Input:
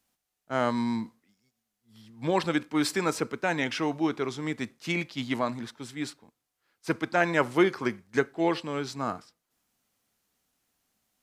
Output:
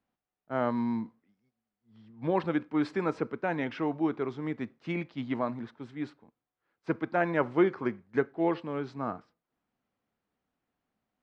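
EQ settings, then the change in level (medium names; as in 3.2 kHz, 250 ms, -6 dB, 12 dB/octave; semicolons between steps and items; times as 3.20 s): tape spacing loss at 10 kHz 29 dB; bass shelf 87 Hz -6 dB; treble shelf 3.8 kHz -7.5 dB; 0.0 dB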